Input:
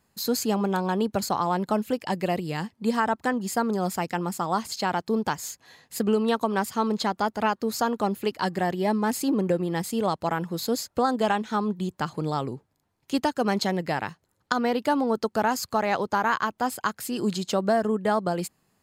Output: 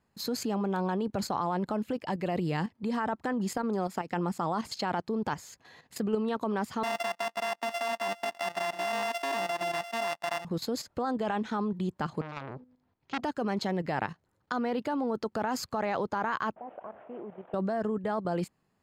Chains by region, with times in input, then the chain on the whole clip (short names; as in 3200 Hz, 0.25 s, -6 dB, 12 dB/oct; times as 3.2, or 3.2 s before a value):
3.57–4.09 HPF 170 Hz + compressor 16:1, threshold -25 dBFS
6.83–10.45 sample sorter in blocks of 64 samples + HPF 610 Hz + comb 1.1 ms, depth 58%
12.21–13.24 LPF 5700 Hz 24 dB/oct + de-hum 251 Hz, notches 2 + core saturation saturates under 2700 Hz
16.56–17.54 delta modulation 16 kbps, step -36.5 dBFS + band-pass 650 Hz, Q 3
whole clip: limiter -16.5 dBFS; level quantiser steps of 11 dB; LPF 2600 Hz 6 dB/oct; gain +3.5 dB